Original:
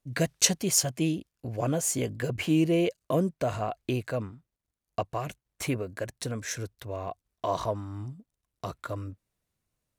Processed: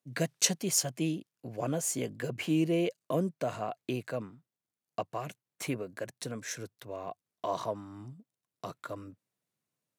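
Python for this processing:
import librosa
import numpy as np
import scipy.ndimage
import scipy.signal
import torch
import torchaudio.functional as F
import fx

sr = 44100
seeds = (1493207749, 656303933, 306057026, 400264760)

y = scipy.signal.sosfilt(scipy.signal.butter(4, 130.0, 'highpass', fs=sr, output='sos'), x)
y = y * 10.0 ** (-4.0 / 20.0)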